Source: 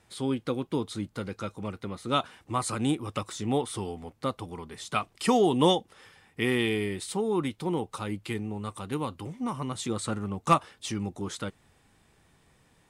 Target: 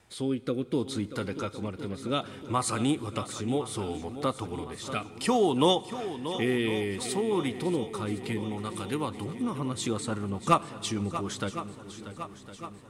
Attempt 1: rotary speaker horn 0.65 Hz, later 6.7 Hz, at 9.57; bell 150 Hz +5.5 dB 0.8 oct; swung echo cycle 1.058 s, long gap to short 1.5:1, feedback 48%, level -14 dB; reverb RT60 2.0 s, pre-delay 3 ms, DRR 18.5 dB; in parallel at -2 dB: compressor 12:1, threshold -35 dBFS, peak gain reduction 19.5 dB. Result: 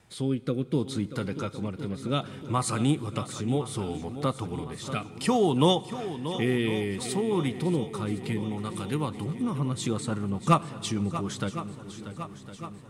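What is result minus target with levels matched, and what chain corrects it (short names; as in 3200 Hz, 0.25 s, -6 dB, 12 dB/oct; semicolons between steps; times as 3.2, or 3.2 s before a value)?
125 Hz band +4.5 dB
rotary speaker horn 0.65 Hz, later 6.7 Hz, at 9.57; bell 150 Hz -3.5 dB 0.8 oct; swung echo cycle 1.058 s, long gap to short 1.5:1, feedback 48%, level -14 dB; reverb RT60 2.0 s, pre-delay 3 ms, DRR 18.5 dB; in parallel at -2 dB: compressor 12:1, threshold -35 dBFS, peak gain reduction 18.5 dB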